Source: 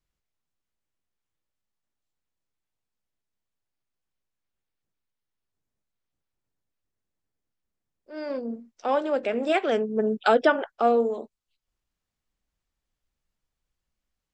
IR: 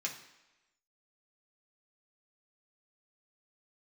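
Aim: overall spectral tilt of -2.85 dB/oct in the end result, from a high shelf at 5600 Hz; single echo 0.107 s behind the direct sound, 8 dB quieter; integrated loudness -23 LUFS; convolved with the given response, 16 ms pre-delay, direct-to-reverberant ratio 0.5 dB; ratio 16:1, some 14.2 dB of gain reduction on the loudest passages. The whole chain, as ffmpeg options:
-filter_complex "[0:a]highshelf=f=5.6k:g=-3.5,acompressor=threshold=-28dB:ratio=16,aecho=1:1:107:0.398,asplit=2[a][b];[1:a]atrim=start_sample=2205,adelay=16[c];[b][c]afir=irnorm=-1:irlink=0,volume=-2.5dB[d];[a][d]amix=inputs=2:normalize=0,volume=9dB"

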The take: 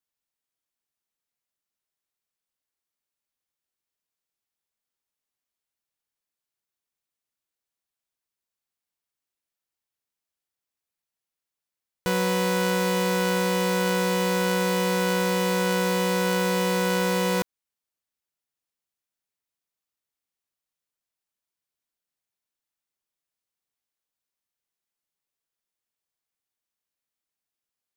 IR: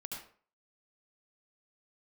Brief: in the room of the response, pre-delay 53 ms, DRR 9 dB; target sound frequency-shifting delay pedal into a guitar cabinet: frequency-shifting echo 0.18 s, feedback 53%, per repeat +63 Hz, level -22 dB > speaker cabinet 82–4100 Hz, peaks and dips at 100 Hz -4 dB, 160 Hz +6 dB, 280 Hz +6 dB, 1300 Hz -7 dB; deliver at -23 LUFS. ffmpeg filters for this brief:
-filter_complex "[0:a]asplit=2[a][b];[1:a]atrim=start_sample=2205,adelay=53[c];[b][c]afir=irnorm=-1:irlink=0,volume=-7.5dB[d];[a][d]amix=inputs=2:normalize=0,asplit=5[e][f][g][h][i];[f]adelay=180,afreqshift=63,volume=-22dB[j];[g]adelay=360,afreqshift=126,volume=-27.5dB[k];[h]adelay=540,afreqshift=189,volume=-33dB[l];[i]adelay=720,afreqshift=252,volume=-38.5dB[m];[e][j][k][l][m]amix=inputs=5:normalize=0,highpass=82,equalizer=f=100:t=q:w=4:g=-4,equalizer=f=160:t=q:w=4:g=6,equalizer=f=280:t=q:w=4:g=6,equalizer=f=1.3k:t=q:w=4:g=-7,lowpass=f=4.1k:w=0.5412,lowpass=f=4.1k:w=1.3066,volume=1.5dB"

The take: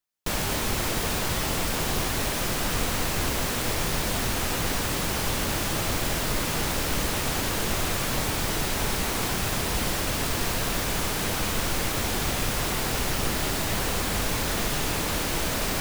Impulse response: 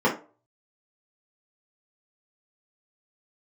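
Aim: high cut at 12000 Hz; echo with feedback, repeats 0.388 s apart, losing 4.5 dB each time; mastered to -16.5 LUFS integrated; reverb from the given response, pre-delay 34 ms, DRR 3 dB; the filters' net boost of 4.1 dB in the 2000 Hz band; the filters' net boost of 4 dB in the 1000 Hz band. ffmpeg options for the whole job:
-filter_complex "[0:a]lowpass=12k,equalizer=f=1k:t=o:g=4,equalizer=f=2k:t=o:g=4,aecho=1:1:388|776|1164|1552|1940|2328|2716|3104|3492:0.596|0.357|0.214|0.129|0.0772|0.0463|0.0278|0.0167|0.01,asplit=2[a][b];[1:a]atrim=start_sample=2205,adelay=34[c];[b][c]afir=irnorm=-1:irlink=0,volume=-20dB[d];[a][d]amix=inputs=2:normalize=0,volume=5.5dB"

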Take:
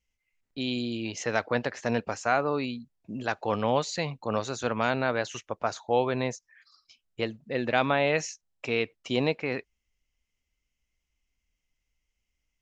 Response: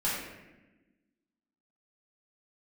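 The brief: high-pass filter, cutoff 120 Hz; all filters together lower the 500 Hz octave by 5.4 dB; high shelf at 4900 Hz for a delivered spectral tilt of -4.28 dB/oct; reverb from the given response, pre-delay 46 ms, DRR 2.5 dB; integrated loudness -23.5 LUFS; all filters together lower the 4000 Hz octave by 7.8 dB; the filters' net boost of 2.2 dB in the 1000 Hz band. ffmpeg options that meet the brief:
-filter_complex "[0:a]highpass=120,equalizer=f=500:t=o:g=-8.5,equalizer=f=1k:t=o:g=7,equalizer=f=4k:t=o:g=-7,highshelf=f=4.9k:g=-8.5,asplit=2[a][b];[1:a]atrim=start_sample=2205,adelay=46[c];[b][c]afir=irnorm=-1:irlink=0,volume=-11dB[d];[a][d]amix=inputs=2:normalize=0,volume=5.5dB"

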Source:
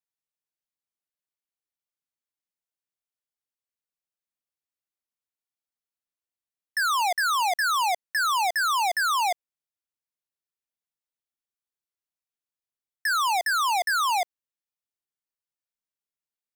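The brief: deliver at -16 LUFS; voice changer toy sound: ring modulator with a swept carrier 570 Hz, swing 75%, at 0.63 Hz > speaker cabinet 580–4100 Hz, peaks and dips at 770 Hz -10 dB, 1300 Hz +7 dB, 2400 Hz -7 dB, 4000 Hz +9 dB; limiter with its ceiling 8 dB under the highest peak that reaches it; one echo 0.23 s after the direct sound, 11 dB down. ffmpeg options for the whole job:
-af "alimiter=level_in=7dB:limit=-24dB:level=0:latency=1,volume=-7dB,aecho=1:1:230:0.282,aeval=exprs='val(0)*sin(2*PI*570*n/s+570*0.75/0.63*sin(2*PI*0.63*n/s))':c=same,highpass=580,equalizer=f=770:t=q:w=4:g=-10,equalizer=f=1.3k:t=q:w=4:g=7,equalizer=f=2.4k:t=q:w=4:g=-7,equalizer=f=4k:t=q:w=4:g=9,lowpass=f=4.1k:w=0.5412,lowpass=f=4.1k:w=1.3066,volume=18dB"

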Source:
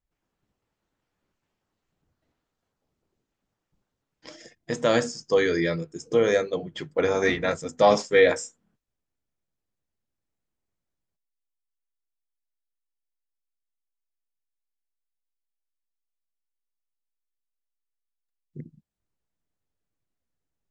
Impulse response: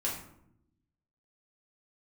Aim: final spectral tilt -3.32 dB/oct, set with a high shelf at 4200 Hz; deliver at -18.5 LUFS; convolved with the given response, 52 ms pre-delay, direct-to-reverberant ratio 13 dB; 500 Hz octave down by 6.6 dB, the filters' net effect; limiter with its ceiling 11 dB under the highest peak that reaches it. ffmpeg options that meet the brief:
-filter_complex "[0:a]equalizer=f=500:t=o:g=-7.5,highshelf=f=4.2k:g=5.5,alimiter=limit=-19.5dB:level=0:latency=1,asplit=2[a][b];[1:a]atrim=start_sample=2205,adelay=52[c];[b][c]afir=irnorm=-1:irlink=0,volume=-18dB[d];[a][d]amix=inputs=2:normalize=0,volume=13.5dB"

